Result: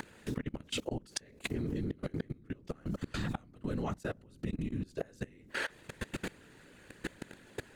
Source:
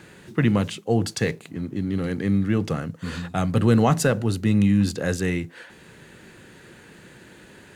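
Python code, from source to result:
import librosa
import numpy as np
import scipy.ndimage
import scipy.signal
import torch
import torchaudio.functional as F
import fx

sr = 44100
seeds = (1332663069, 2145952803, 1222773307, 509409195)

y = fx.whisperise(x, sr, seeds[0])
y = fx.gate_flip(y, sr, shuts_db=-17.0, range_db=-27)
y = fx.level_steps(y, sr, step_db=23)
y = y * librosa.db_to_amplitude(11.5)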